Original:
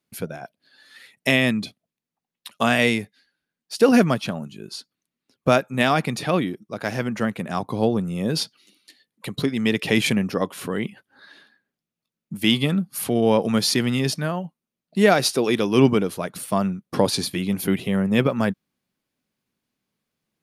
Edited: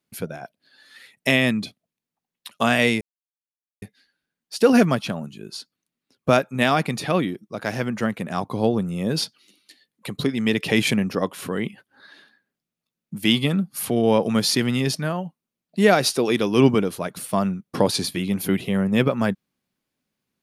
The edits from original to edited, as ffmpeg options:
-filter_complex "[0:a]asplit=2[s0][s1];[s0]atrim=end=3.01,asetpts=PTS-STARTPTS,afade=t=out:st=3.006:d=0.004:c=hsin,apad=pad_dur=0.81[s2];[s1]atrim=start=3.01,asetpts=PTS-STARTPTS,afade=t=in:d=0.004:c=hsin[s3];[s2][s3]concat=n=2:v=0:a=1"

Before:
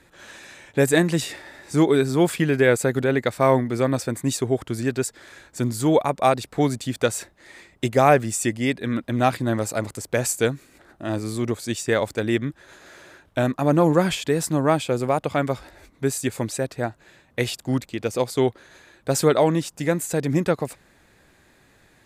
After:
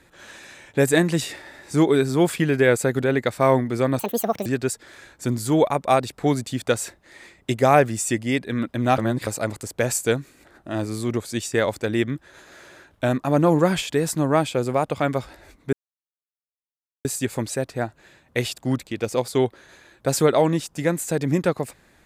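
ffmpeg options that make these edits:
-filter_complex "[0:a]asplit=6[s0][s1][s2][s3][s4][s5];[s0]atrim=end=3.994[s6];[s1]atrim=start=3.99:end=4.8,asetpts=PTS-STARTPTS,asetrate=76293,aresample=44100[s7];[s2]atrim=start=4.796:end=9.322[s8];[s3]atrim=start=9.318:end=9.612,asetpts=PTS-STARTPTS,areverse[s9];[s4]atrim=start=9.608:end=16.07,asetpts=PTS-STARTPTS,afade=t=out:st=6.458:d=0.004:c=hsin,apad=pad_dur=1.32[s10];[s5]atrim=start=16.07,asetpts=PTS-STARTPTS,afade=t=in:d=0.004:c=hsin[s11];[s6][s7]acrossfade=d=0.004:c1=hsin:c2=hsin[s12];[s12][s8]acrossfade=d=0.004:c1=hsin:c2=hsin[s13];[s13][s9]acrossfade=d=0.004:c1=hsin:c2=hsin[s14];[s10][s11]concat=n=2:v=0:a=1[s15];[s14][s15]acrossfade=d=0.004:c1=hsin:c2=hsin"

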